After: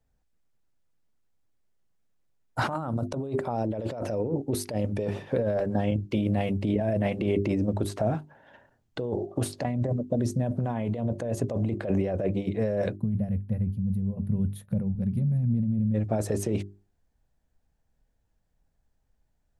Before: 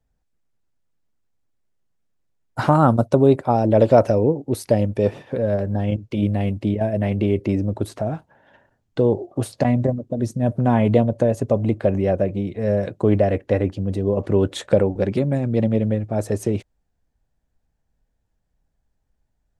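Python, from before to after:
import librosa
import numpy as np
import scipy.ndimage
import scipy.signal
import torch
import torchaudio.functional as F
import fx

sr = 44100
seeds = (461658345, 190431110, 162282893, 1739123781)

y = fx.spec_box(x, sr, start_s=12.96, length_s=2.99, low_hz=240.0, high_hz=9400.0, gain_db=-24)
y = fx.hum_notches(y, sr, base_hz=50, count=8)
y = fx.over_compress(y, sr, threshold_db=-23.0, ratio=-1.0)
y = F.gain(torch.from_numpy(y), -3.5).numpy()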